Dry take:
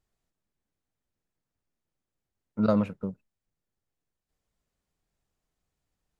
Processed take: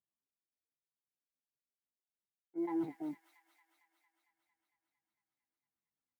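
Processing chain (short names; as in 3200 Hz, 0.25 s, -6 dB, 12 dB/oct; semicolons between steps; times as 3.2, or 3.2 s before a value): HPF 87 Hz 12 dB/oct; resonant high shelf 1700 Hz -8 dB, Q 1.5; pitch shift +8 st; reverse; compressor 16:1, threshold -40 dBFS, peak gain reduction 22.5 dB; reverse; modulation noise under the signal 19 dB; sine folder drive 4 dB, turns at -32 dBFS; doubler 15 ms -10.5 dB; on a send: thin delay 0.227 s, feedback 79%, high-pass 1800 Hz, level -3 dB; on the sum: spectral expander 1.5:1; gain +1 dB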